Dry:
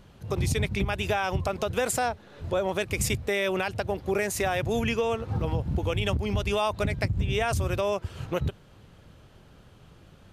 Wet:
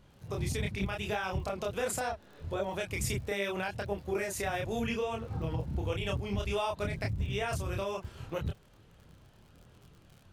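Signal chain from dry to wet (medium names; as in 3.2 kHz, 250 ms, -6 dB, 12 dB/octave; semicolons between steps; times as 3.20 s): crackle 37 per s -38 dBFS; chorus voices 2, 0.77 Hz, delay 28 ms, depth 3.6 ms; trim -3.5 dB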